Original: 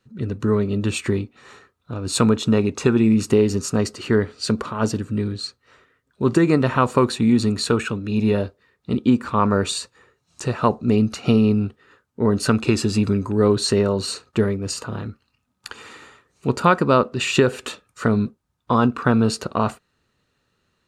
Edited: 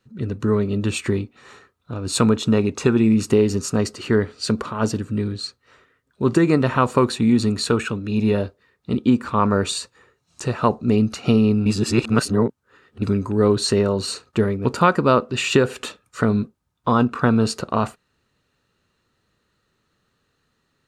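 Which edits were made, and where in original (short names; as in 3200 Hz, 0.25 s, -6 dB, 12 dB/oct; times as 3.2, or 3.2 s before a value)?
11.66–13.02 reverse
14.65–16.48 cut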